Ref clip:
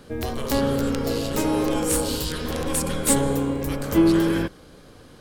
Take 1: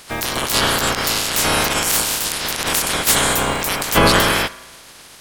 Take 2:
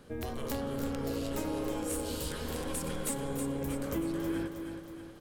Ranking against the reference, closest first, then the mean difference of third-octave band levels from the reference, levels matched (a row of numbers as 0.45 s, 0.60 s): 2, 1; 4.0 dB, 8.5 dB